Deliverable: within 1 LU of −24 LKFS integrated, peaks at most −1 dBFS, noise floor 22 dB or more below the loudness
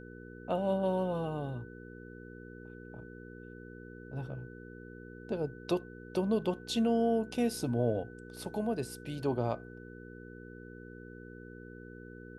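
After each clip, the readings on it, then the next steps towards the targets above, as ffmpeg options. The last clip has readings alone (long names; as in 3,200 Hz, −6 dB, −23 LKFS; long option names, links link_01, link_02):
mains hum 60 Hz; hum harmonics up to 480 Hz; level of the hum −46 dBFS; interfering tone 1,500 Hz; level of the tone −54 dBFS; integrated loudness −34.0 LKFS; sample peak −18.0 dBFS; target loudness −24.0 LKFS
→ -af "bandreject=frequency=60:width_type=h:width=4,bandreject=frequency=120:width_type=h:width=4,bandreject=frequency=180:width_type=h:width=4,bandreject=frequency=240:width_type=h:width=4,bandreject=frequency=300:width_type=h:width=4,bandreject=frequency=360:width_type=h:width=4,bandreject=frequency=420:width_type=h:width=4,bandreject=frequency=480:width_type=h:width=4"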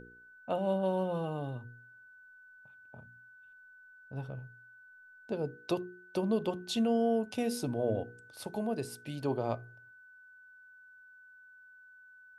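mains hum none found; interfering tone 1,500 Hz; level of the tone −54 dBFS
→ -af "bandreject=frequency=1500:width=30"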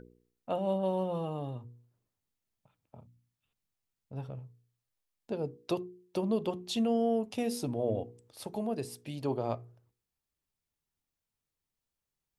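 interfering tone none found; integrated loudness −34.0 LKFS; sample peak −18.5 dBFS; target loudness −24.0 LKFS
→ -af "volume=10dB"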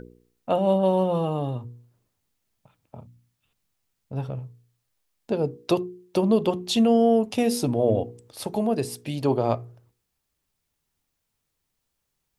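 integrated loudness −24.0 LKFS; sample peak −8.5 dBFS; background noise floor −79 dBFS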